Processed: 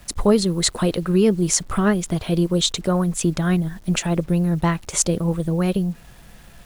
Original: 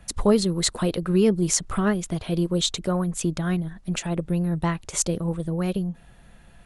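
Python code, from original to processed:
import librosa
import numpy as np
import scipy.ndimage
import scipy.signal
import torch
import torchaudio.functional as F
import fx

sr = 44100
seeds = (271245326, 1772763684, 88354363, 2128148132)

p1 = fx.rider(x, sr, range_db=10, speed_s=0.5)
p2 = x + (p1 * 10.0 ** (0.0 / 20.0))
p3 = fx.quant_dither(p2, sr, seeds[0], bits=8, dither='none')
y = p3 * 10.0 ** (-2.0 / 20.0)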